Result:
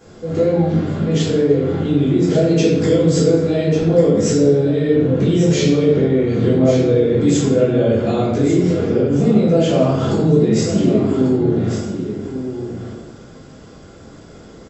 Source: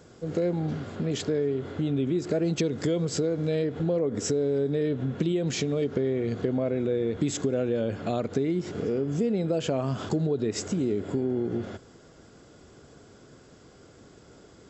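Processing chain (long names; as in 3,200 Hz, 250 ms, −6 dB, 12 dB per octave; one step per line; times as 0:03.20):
on a send: single-tap delay 1,145 ms −9.5 dB
on the sum: rectangular room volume 350 cubic metres, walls mixed, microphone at 3.8 metres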